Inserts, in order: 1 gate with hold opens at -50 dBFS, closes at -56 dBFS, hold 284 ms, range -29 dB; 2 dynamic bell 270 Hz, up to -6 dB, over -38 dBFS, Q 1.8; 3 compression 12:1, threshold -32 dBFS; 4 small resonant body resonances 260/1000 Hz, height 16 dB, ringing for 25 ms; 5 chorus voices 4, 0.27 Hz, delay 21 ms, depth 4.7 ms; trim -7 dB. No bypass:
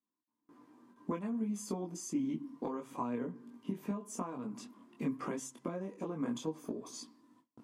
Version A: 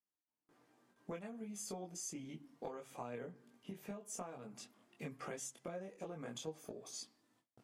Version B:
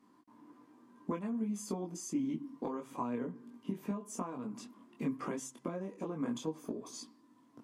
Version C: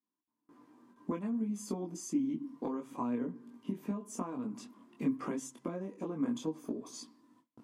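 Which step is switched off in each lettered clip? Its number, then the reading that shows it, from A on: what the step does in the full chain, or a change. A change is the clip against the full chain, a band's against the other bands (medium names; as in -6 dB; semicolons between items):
4, 250 Hz band -9.5 dB; 1, momentary loudness spread change +3 LU; 2, 250 Hz band +3.0 dB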